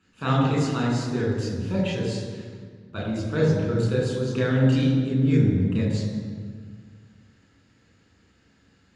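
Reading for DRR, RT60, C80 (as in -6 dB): -4.5 dB, 1.8 s, 3.0 dB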